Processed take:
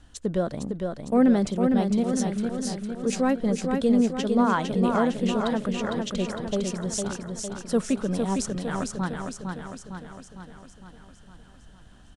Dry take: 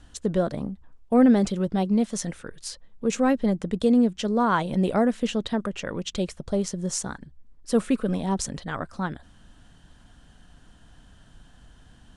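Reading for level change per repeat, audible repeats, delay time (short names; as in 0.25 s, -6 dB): -5.0 dB, 7, 0.456 s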